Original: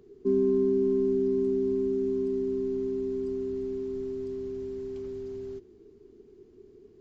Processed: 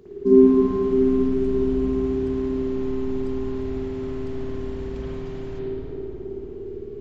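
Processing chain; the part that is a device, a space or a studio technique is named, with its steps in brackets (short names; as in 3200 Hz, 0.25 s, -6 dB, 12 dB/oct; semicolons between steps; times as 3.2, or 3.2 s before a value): dub delay into a spring reverb (darkening echo 0.307 s, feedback 68%, low-pass 1200 Hz, level -4 dB; spring tank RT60 1.8 s, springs 54 ms, chirp 60 ms, DRR -9.5 dB); gain +6 dB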